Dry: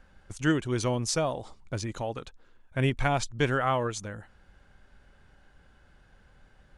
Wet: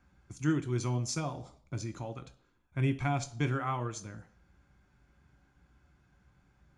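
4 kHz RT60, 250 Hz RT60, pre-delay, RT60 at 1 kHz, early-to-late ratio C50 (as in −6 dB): 0.60 s, 0.55 s, 3 ms, 0.55 s, 16.0 dB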